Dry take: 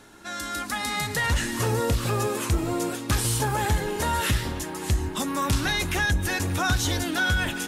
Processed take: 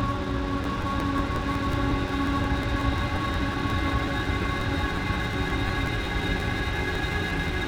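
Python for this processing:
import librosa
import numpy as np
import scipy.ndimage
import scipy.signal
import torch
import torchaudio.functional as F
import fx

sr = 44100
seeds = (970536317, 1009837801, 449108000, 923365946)

y = scipy.signal.sosfilt(scipy.signal.butter(4, 4600.0, 'lowpass', fs=sr, output='sos'), x)
y = fx.high_shelf(y, sr, hz=3400.0, db=-11.5)
y = fx.paulstretch(y, sr, seeds[0], factor=18.0, window_s=1.0, from_s=5.39)
y = np.sign(y) * np.maximum(np.abs(y) - 10.0 ** (-39.5 / 20.0), 0.0)
y = y + 10.0 ** (-5.5 / 20.0) * np.pad(y, (int(641 * sr / 1000.0), 0))[:len(y)]
y = fx.buffer_crackle(y, sr, first_s=0.63, period_s=0.18, block=512, kind='repeat')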